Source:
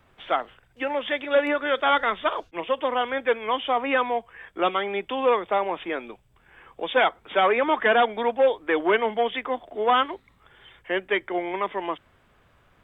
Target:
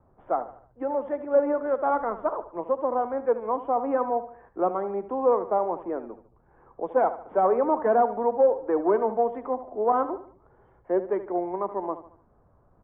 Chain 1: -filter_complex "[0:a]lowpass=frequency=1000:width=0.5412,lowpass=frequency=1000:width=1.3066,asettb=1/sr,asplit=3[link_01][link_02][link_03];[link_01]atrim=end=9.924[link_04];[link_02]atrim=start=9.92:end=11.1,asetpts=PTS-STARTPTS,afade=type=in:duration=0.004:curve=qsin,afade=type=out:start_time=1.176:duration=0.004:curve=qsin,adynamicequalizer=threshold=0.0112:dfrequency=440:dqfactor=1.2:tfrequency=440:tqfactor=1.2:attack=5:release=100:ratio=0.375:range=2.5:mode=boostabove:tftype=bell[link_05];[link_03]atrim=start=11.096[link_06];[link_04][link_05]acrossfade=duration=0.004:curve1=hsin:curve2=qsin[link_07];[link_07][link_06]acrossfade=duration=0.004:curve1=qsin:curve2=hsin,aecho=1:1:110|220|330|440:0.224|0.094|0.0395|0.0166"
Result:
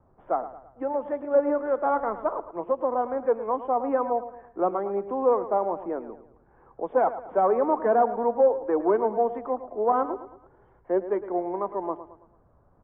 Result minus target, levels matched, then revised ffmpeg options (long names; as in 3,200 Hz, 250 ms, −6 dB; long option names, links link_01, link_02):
echo 36 ms late
-filter_complex "[0:a]lowpass=frequency=1000:width=0.5412,lowpass=frequency=1000:width=1.3066,asettb=1/sr,asplit=3[link_01][link_02][link_03];[link_01]atrim=end=9.924[link_04];[link_02]atrim=start=9.92:end=11.1,asetpts=PTS-STARTPTS,afade=type=in:duration=0.004:curve=qsin,afade=type=out:start_time=1.176:duration=0.004:curve=qsin,adynamicequalizer=threshold=0.0112:dfrequency=440:dqfactor=1.2:tfrequency=440:tqfactor=1.2:attack=5:release=100:ratio=0.375:range=2.5:mode=boostabove:tftype=bell[link_05];[link_03]atrim=start=11.096[link_06];[link_04][link_05]acrossfade=duration=0.004:curve1=hsin:curve2=qsin[link_07];[link_07][link_06]acrossfade=duration=0.004:curve1=qsin:curve2=hsin,aecho=1:1:74|148|222|296:0.224|0.094|0.0395|0.0166"